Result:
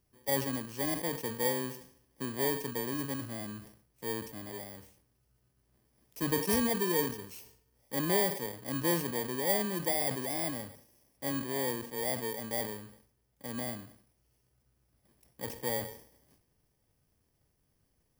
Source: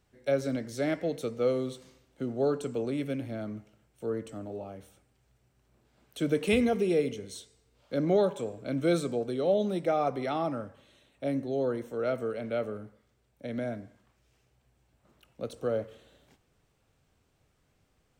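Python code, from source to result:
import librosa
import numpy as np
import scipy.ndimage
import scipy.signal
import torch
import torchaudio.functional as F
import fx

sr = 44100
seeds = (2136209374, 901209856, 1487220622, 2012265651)

y = fx.bit_reversed(x, sr, seeds[0], block=32)
y = fx.sustainer(y, sr, db_per_s=100.0)
y = y * 10.0 ** (-4.0 / 20.0)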